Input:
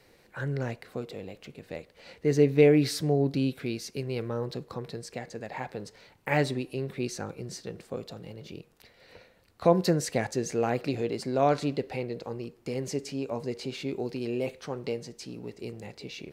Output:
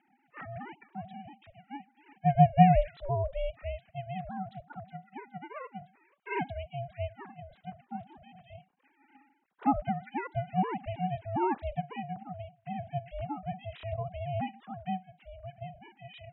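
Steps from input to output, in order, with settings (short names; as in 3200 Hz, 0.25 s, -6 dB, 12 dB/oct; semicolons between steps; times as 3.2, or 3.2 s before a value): sine-wave speech; ring modulator 280 Hz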